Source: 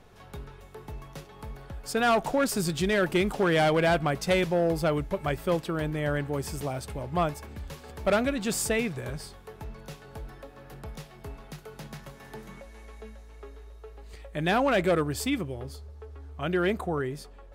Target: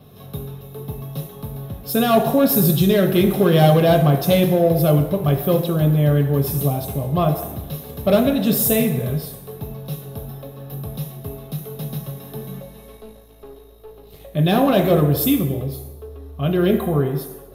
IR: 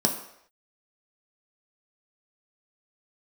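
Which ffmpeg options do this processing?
-filter_complex "[0:a]aexciter=amount=6.8:drive=9.7:freq=11k[a];[1:a]atrim=start_sample=2205,asetrate=29988,aresample=44100[b];[a][b]afir=irnorm=-1:irlink=0,asettb=1/sr,asplit=3[c][d][e];[c]atrim=end=12.974[f];[d]atrim=start=12.97:end=14.21,asetpts=PTS-STARTPTS,afade=t=in:d=0.004:c=qsin,afade=t=out:st=1.236:d=0.004:c=qsin,aeval=exprs='(tanh(14.1*val(0)+0.55)-tanh(0.55))/14.1':c=same[g];[e]atrim=start=14.206[h];[f][g]acrossfade=d=0.004:c1=hsin:c2=qsin[i];[i][h]acrossfade=d=0.004:c1=qsin:c2=hsin,volume=-9dB"

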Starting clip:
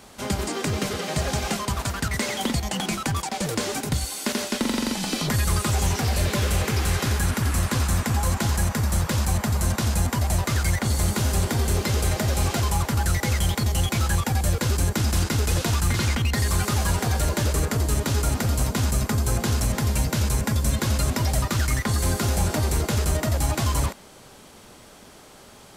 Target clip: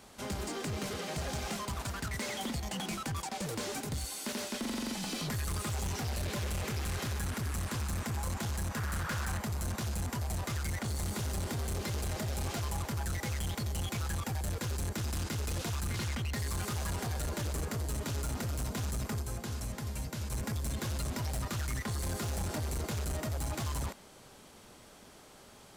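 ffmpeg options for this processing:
-filter_complex "[0:a]asettb=1/sr,asplit=3[a][b][c];[a]atrim=end=8.764[d];[b]atrim=start=8.76:end=9.39,asetpts=PTS-STARTPTS,afade=t=in:d=0.004:c=qsin,afade=t=out:st=0.626:d=0.004:c=qsin,equalizer=f=1.5k:w=1.7:g=13[e];[c]atrim=start=9.386[f];[d][e]acrossfade=d=0.004:c1=hsin:c2=qsin[g];[g][f]acrossfade=d=0.004:c1=qsin:c2=hsin,asettb=1/sr,asplit=3[h][i][j];[h]atrim=end=19.224[k];[i]atrim=start=19.22:end=20.32,asetpts=PTS-STARTPTS,afade=t=in:d=0.004:c=qsin,afade=t=out:st=1.096:d=0.004:c=qsin,aeval=exprs='0.251*(cos(1*acos(clip(val(0)/0.251,-1,1)))-cos(1*PI/2))+0.0501*(cos(3*acos(clip(val(0)/0.251,-1,1)))-cos(3*PI/2))':c=same[l];[j]atrim=start=20.316[m];[k][l]acrossfade=d=0.004:c1=hsin:c2=qsin[n];[n][m]acrossfade=d=0.004:c1=qsin:c2=hsin,asoftclip=type=tanh:threshold=-23.5dB,volume=-7.5dB"

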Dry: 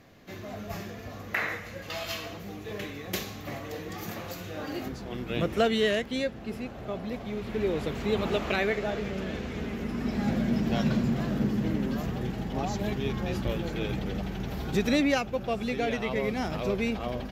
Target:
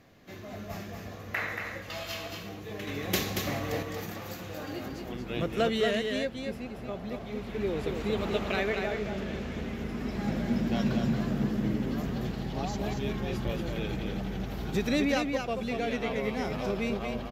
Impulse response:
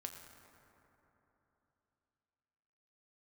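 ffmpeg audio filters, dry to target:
-filter_complex "[0:a]asettb=1/sr,asplit=3[a][b][c];[a]atrim=end=2.874[d];[b]atrim=start=2.87:end=3.83,asetpts=PTS-STARTPTS,afade=t=in:d=0.004:c=qsin,afade=t=out:st=0.956:d=0.004:c=qsin,acontrast=79[e];[c]atrim=start=3.826[f];[d][e]acrossfade=d=0.004:c1=hsin:c2=qsin[g];[g][f]acrossfade=d=0.004:c1=qsin:c2=hsin,asettb=1/sr,asplit=3[h][i][j];[h]atrim=end=12.114[k];[i]atrim=start=12.11:end=12.71,asetpts=PTS-STARTPTS,afade=t=in:d=0.004:c=qsin,afade=t=out:st=0.596:d=0.004:c=qsin,equalizer=f=4.3k:t=o:w=0.55:g=7[l];[j]atrim=start=12.706[m];[k][l]acrossfade=d=0.004:c1=hsin:c2=qsin[n];[n][m]acrossfade=d=0.004:c1=qsin:c2=hsin,aecho=1:1:231:0.562,volume=-3dB"

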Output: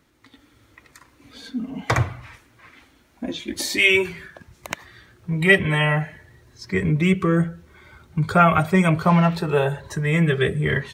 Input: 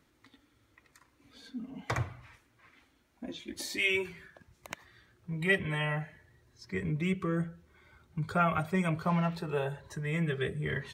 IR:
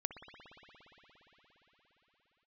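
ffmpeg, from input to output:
-af "dynaudnorm=f=220:g=3:m=6.5dB,volume=6dB"

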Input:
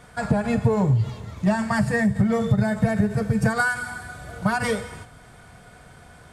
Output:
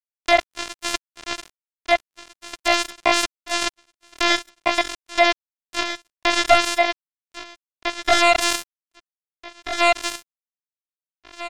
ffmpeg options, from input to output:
-filter_complex "[0:a]lowpass=f=3.5k:t=q:w=7.1,asplit=2[a][b];[b]adelay=342,lowpass=f=840:p=1,volume=-17dB,asplit=2[c][d];[d]adelay=342,lowpass=f=840:p=1,volume=0.53,asplit=2[e][f];[f]adelay=342,lowpass=f=840:p=1,volume=0.53,asplit=2[g][h];[h]adelay=342,lowpass=f=840:p=1,volume=0.53,asplit=2[i][j];[j]adelay=342,lowpass=f=840:p=1,volume=0.53[k];[c][e][g][i][k]amix=inputs=5:normalize=0[l];[a][l]amix=inputs=2:normalize=0,crystalizer=i=5.5:c=0,asplit=3[m][n][o];[m]bandpass=f=730:t=q:w=8,volume=0dB[p];[n]bandpass=f=1.09k:t=q:w=8,volume=-6dB[q];[o]bandpass=f=2.44k:t=q:w=8,volume=-9dB[r];[p][q][r]amix=inputs=3:normalize=0,afftfilt=real='hypot(re,im)*cos(PI*b)':imag='0':win_size=512:overlap=0.75,acrusher=bits=3:mix=0:aa=0.5,asplit=2[s][t];[t]aecho=0:1:876|1752:0.224|0.0425[u];[s][u]amix=inputs=2:normalize=0,atempo=0.55,alimiter=level_in=28dB:limit=-1dB:release=50:level=0:latency=1,volume=-1dB"

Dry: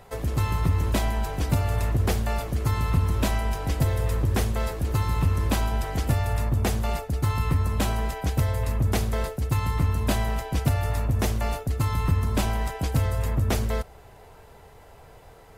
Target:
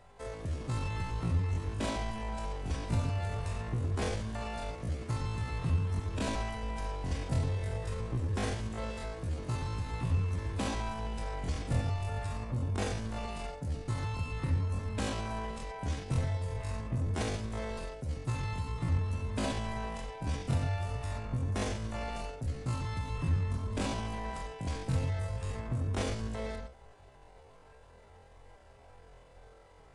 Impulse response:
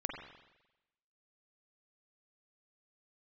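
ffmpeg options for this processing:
-filter_complex "[0:a]aresample=22050,aresample=44100[a];[1:a]atrim=start_sample=2205,atrim=end_sample=6174,asetrate=83790,aresample=44100[b];[a][b]afir=irnorm=-1:irlink=0,atempo=0.52,volume=-3dB"

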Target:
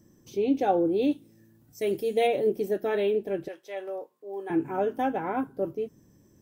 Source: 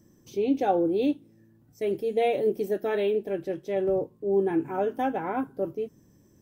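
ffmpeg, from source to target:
-filter_complex "[0:a]asettb=1/sr,asplit=3[a][b][c];[a]atrim=end=1.114[d];[b]atrim=start=1.11:end=2.27,asetpts=PTS-STARTPTS,afade=t=in:d=0.004:c=qsin,afade=t=out:st=1.156:d=0.004:c=qsin,highshelf=f=3.2k:g=10[e];[c]atrim=start=2.266[f];[d][e]acrossfade=d=0.004:c1=hsin:c2=qsin[g];[g][f]acrossfade=d=0.004:c1=qsin:c2=hsin,asettb=1/sr,asplit=3[h][i][j];[h]atrim=end=3.484[k];[i]atrim=start=3.48:end=4.5,asetpts=PTS-STARTPTS,afade=t=in:d=0.004:c=qsin,afade=t=out:st=1.016:d=0.004:c=qsin,highpass=810[l];[j]atrim=start=4.496[m];[k][l]acrossfade=d=0.004:c1=hsin:c2=qsin[n];[n][m]acrossfade=d=0.004:c1=qsin:c2=hsin"

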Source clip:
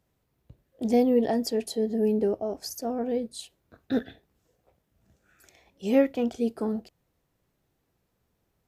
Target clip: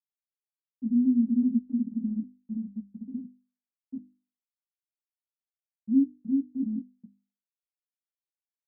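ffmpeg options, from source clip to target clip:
-filter_complex "[0:a]lowshelf=f=280:t=q:w=3:g=9,flanger=delay=1:depth=4:regen=-49:speed=0.29:shape=sinusoidal,asplit=3[a][b][c];[a]bandpass=f=270:t=q:w=8,volume=0dB[d];[b]bandpass=f=2.29k:t=q:w=8,volume=-6dB[e];[c]bandpass=f=3.01k:t=q:w=8,volume=-9dB[f];[d][e][f]amix=inputs=3:normalize=0,asplit=3[g][h][i];[g]afade=t=out:st=6.03:d=0.02[j];[h]acompressor=threshold=-35dB:ratio=5,afade=t=in:st=6.03:d=0.02,afade=t=out:st=6.58:d=0.02[k];[i]afade=t=in:st=6.58:d=0.02[l];[j][k][l]amix=inputs=3:normalize=0,aecho=1:1:370|629|810.3|937.2|1026:0.631|0.398|0.251|0.158|0.1,asplit=3[m][n][o];[m]afade=t=out:st=1.45:d=0.02[p];[n]agate=range=-33dB:threshold=-22dB:ratio=3:detection=peak,afade=t=in:st=1.45:d=0.02,afade=t=out:st=2.44:d=0.02[q];[o]afade=t=in:st=2.44:d=0.02[r];[p][q][r]amix=inputs=3:normalize=0,afftfilt=real='re*gte(hypot(re,im),0.447)':imag='im*gte(hypot(re,im),0.447)':win_size=1024:overlap=0.75,equalizer=f=820:w=1.5:g=2.5,bandreject=f=50:t=h:w=6,bandreject=f=100:t=h:w=6,bandreject=f=150:t=h:w=6,bandreject=f=200:t=h:w=6,bandreject=f=250:t=h:w=6,bandreject=f=300:t=h:w=6"

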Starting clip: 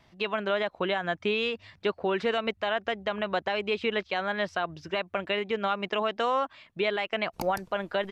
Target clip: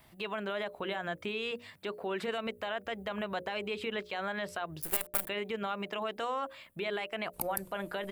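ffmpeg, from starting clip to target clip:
-filter_complex "[0:a]asettb=1/sr,asplit=3[a][b][c];[a]atrim=end=1.514[d];[b]atrim=start=1.51:end=2.28,asetpts=PTS-STARTPTS,afade=t=in:d=0.004:c=qsin,afade=t=out:st=0.766:d=0.004:c=qsin,highpass=140[e];[c]atrim=start=2.276[f];[d][e]acrossfade=d=0.004:c1=hsin:c2=qsin[g];[g][f]acrossfade=d=0.004:c1=qsin:c2=hsin,asplit=3[h][i][j];[h]afade=t=out:st=4.81:d=0.02[k];[i]acrusher=bits=5:dc=4:mix=0:aa=0.000001,afade=t=in:st=4.81:d=0.02,afade=t=out:st=5.27:d=0.02[l];[j]afade=t=in:st=5.27:d=0.02[m];[k][l][m]amix=inputs=3:normalize=0,alimiter=level_in=2dB:limit=-24dB:level=0:latency=1:release=96,volume=-2dB,bandreject=f=60:t=h:w=6,bandreject=f=120:t=h:w=6,bandreject=f=180:t=h:w=6,bandreject=f=240:t=h:w=6,bandreject=f=300:t=h:w=6,bandreject=f=360:t=h:w=6,bandreject=f=420:t=h:w=6,bandreject=f=480:t=h:w=6,bandreject=f=540:t=h:w=6,bandreject=f=600:t=h:w=6,aexciter=amount=10.9:drive=2.8:freq=8.3k"

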